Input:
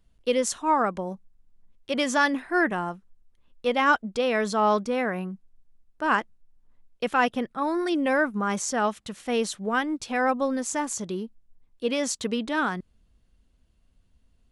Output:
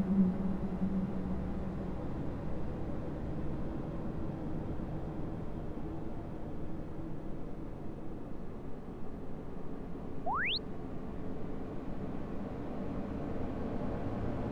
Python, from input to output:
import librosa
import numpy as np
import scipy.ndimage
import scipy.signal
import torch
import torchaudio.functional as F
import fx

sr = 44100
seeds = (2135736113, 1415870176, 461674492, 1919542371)

p1 = fx.dmg_wind(x, sr, seeds[0], corner_hz=340.0, level_db=-39.0)
p2 = fx.level_steps(p1, sr, step_db=18)
p3 = p1 + F.gain(torch.from_numpy(p2), 2.5).numpy()
p4 = fx.paulstretch(p3, sr, seeds[1], factor=37.0, window_s=0.25, from_s=5.38)
p5 = fx.spec_paint(p4, sr, seeds[2], shape='rise', start_s=10.26, length_s=0.32, low_hz=620.0, high_hz=4600.0, level_db=-41.0)
y = F.gain(torch.from_numpy(p5), 7.5).numpy()